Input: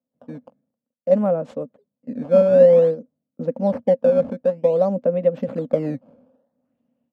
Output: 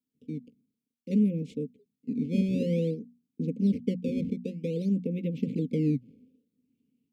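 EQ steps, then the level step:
Chebyshev band-stop filter 440–2,200 Hz, order 5
mains-hum notches 60/120/180/240 Hz
dynamic equaliser 140 Hz, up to +4 dB, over −45 dBFS, Q 2.8
0.0 dB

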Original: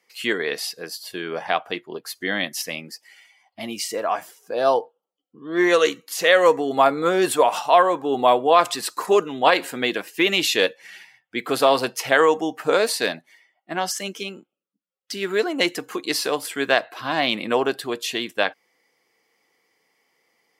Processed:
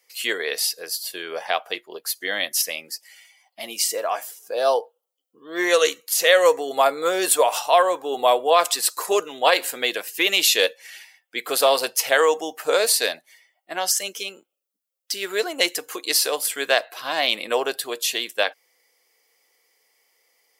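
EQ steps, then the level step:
spectral tilt +4.5 dB per octave
parametric band 520 Hz +10 dB 1.2 octaves
−5.5 dB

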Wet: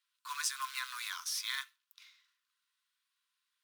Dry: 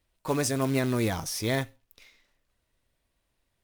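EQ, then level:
Chebyshev high-pass with heavy ripple 1,000 Hz, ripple 6 dB
0.0 dB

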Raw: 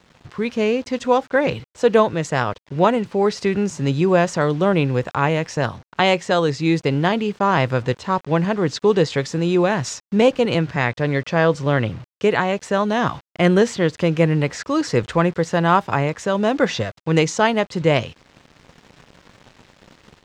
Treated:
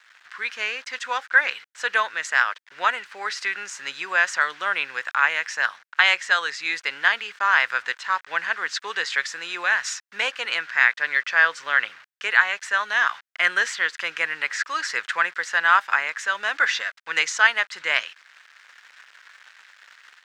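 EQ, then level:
high-pass with resonance 1,600 Hz, resonance Q 3.1
−1.0 dB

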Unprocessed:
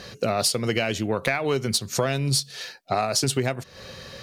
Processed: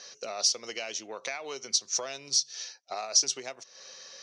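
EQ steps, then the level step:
high-pass filter 520 Hz 12 dB per octave
dynamic equaliser 1,600 Hz, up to −4 dB, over −44 dBFS, Q 2.7
transistor ladder low-pass 6,200 Hz, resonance 80%
+2.0 dB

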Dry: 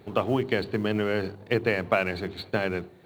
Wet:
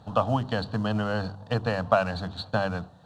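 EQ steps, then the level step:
high-frequency loss of the air 110 metres
high-shelf EQ 5,000 Hz +10 dB
phaser with its sweep stopped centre 910 Hz, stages 4
+5.5 dB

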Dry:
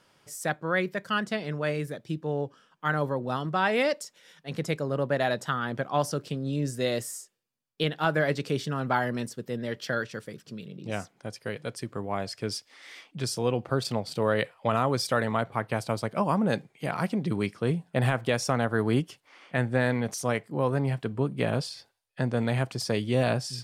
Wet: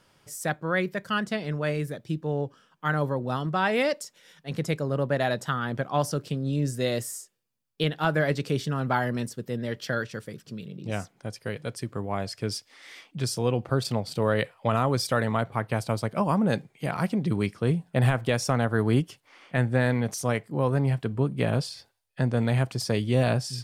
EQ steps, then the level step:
low-shelf EQ 110 Hz +9.5 dB
high-shelf EQ 11,000 Hz +4.5 dB
0.0 dB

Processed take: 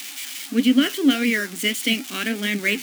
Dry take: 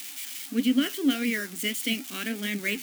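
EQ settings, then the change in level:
low-shelf EQ 140 Hz −7 dB
high-shelf EQ 9,000 Hz −7.5 dB
+8.0 dB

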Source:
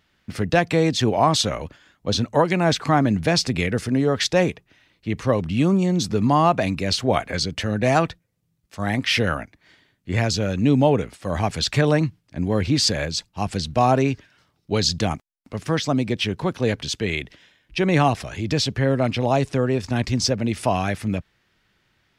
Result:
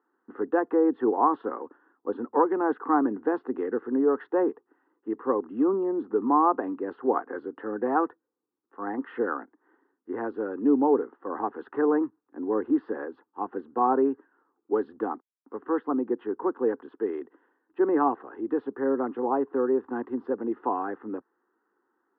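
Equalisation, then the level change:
high-pass filter 270 Hz 24 dB per octave
Bessel low-pass filter 1,100 Hz, order 8
phaser with its sweep stopped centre 620 Hz, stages 6
+1.5 dB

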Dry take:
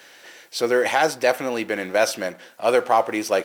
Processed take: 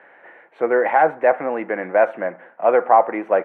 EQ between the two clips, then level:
elliptic band-pass filter 150–2,000 Hz, stop band 40 dB
parametric band 800 Hz +7 dB 1.3 octaves
−1.0 dB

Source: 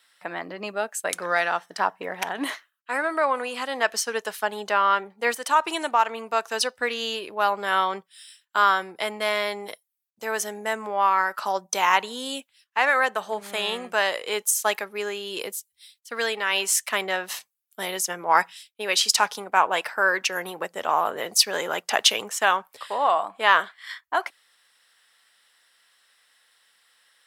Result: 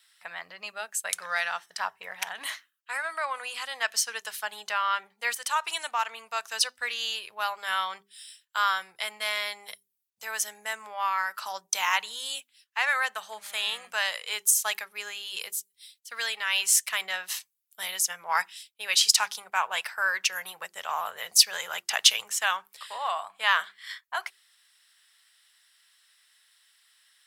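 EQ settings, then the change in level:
guitar amp tone stack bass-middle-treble 10-0-10
mains-hum notches 50/100/150/200/250/300/350/400 Hz
+1.5 dB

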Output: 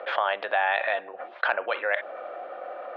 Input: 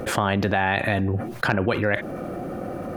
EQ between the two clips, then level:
elliptic band-pass filter 580–3,600 Hz, stop band 80 dB
high-frequency loss of the air 120 metres
0.0 dB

